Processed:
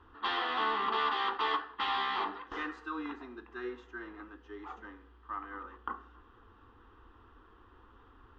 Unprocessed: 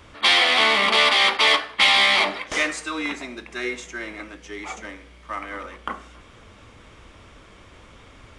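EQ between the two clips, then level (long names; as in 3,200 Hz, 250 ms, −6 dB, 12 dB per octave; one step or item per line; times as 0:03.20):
transistor ladder low-pass 2,800 Hz, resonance 35%
phaser with its sweep stopped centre 600 Hz, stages 6
−1.0 dB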